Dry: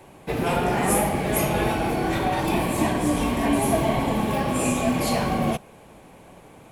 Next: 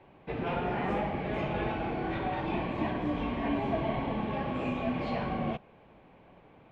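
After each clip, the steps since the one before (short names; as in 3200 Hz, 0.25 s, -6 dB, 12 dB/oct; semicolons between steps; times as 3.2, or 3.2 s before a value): LPF 3300 Hz 24 dB/oct; gain -9 dB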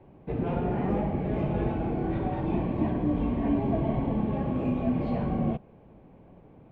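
tilt shelf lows +9 dB, about 750 Hz; gain -1 dB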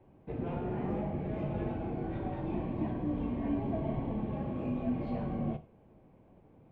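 non-linear reverb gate 0.13 s falling, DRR 9.5 dB; gain -7.5 dB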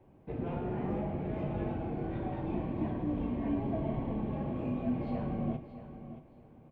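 feedback echo 0.626 s, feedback 25%, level -12.5 dB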